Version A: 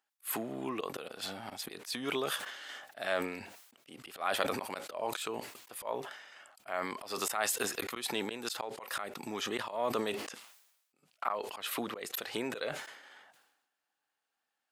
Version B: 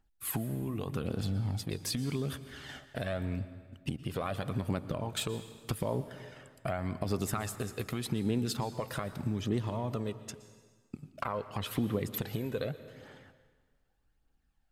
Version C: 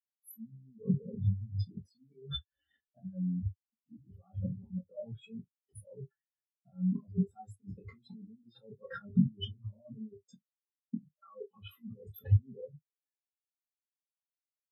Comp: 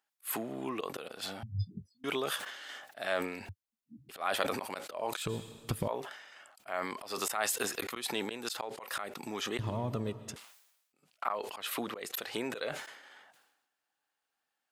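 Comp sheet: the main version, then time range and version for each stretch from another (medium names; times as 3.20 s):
A
1.43–2.04 s: from C
3.49–4.09 s: from C
5.26–5.88 s: from B
9.59–10.36 s: from B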